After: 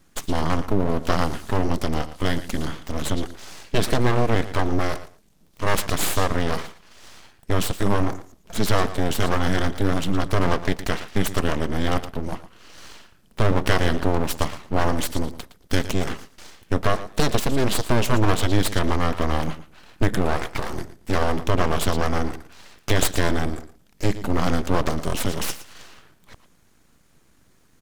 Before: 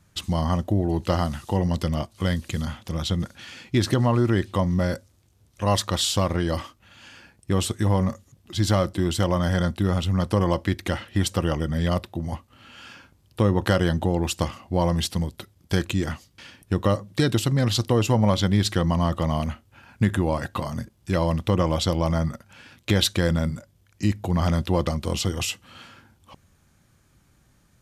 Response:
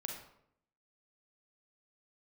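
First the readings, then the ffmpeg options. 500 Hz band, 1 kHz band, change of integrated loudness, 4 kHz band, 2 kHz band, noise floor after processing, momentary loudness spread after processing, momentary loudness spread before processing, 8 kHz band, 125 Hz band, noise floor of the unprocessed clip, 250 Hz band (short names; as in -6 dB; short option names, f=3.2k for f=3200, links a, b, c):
+1.0 dB, +3.0 dB, -0.5 dB, -1.0 dB, +5.0 dB, -57 dBFS, 10 LU, 10 LU, +1.5 dB, -3.0 dB, -61 dBFS, -1.0 dB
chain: -af "aecho=1:1:114|228:0.2|0.0339,aeval=exprs='abs(val(0))':c=same,volume=3.5dB"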